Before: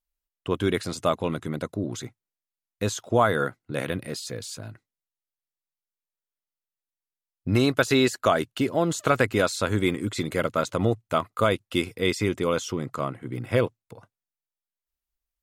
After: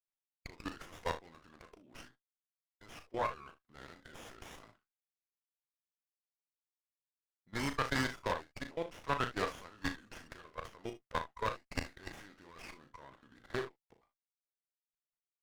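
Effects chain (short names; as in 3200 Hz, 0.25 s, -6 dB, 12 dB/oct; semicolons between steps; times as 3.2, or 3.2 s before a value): level quantiser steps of 21 dB; band-pass 2900 Hz, Q 0.86; on a send: early reflections 36 ms -8 dB, 61 ms -14.5 dB, 76 ms -18 dB; on the sum: formant shift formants -4 st; running maximum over 9 samples; gain -1.5 dB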